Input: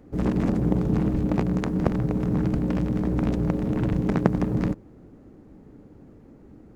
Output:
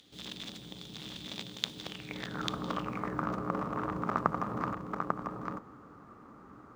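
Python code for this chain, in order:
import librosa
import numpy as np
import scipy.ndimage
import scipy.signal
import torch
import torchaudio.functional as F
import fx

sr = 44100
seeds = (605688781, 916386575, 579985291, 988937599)

p1 = fx.bass_treble(x, sr, bass_db=11, treble_db=15)
p2 = (np.kron(p1[::2], np.eye(2)[0]) * 2)[:len(p1)]
p3 = fx.over_compress(p2, sr, threshold_db=-22.0, ratio=-1.0)
p4 = p2 + (p3 * 10.0 ** (-1.5 / 20.0))
p5 = fx.filter_sweep_bandpass(p4, sr, from_hz=3500.0, to_hz=1200.0, start_s=1.86, end_s=2.48, q=7.8)
p6 = p5 + fx.echo_single(p5, sr, ms=844, db=-3.5, dry=0)
p7 = fx.dynamic_eq(p6, sr, hz=570.0, q=0.78, threshold_db=-56.0, ratio=4.0, max_db=5)
y = p7 * 10.0 ** (7.5 / 20.0)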